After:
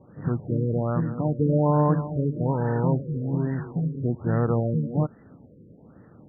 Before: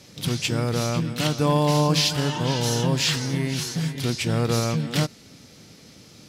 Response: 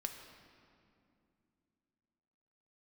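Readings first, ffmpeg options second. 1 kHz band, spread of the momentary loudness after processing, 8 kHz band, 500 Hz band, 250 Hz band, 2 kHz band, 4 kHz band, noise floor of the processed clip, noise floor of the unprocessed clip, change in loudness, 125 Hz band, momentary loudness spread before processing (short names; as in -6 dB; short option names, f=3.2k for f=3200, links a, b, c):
-2.5 dB, 7 LU, under -40 dB, -0.5 dB, 0.0 dB, -12.5 dB, under -40 dB, -52 dBFS, -49 dBFS, -2.0 dB, 0.0 dB, 6 LU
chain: -af "afftfilt=real='re*lt(b*sr/1024,540*pow(2000/540,0.5+0.5*sin(2*PI*1.2*pts/sr)))':imag='im*lt(b*sr/1024,540*pow(2000/540,0.5+0.5*sin(2*PI*1.2*pts/sr)))':win_size=1024:overlap=0.75"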